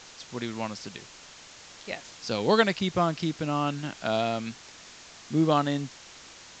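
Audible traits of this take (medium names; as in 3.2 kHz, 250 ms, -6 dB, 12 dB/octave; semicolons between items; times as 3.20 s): a quantiser's noise floor 8-bit, dither triangular; A-law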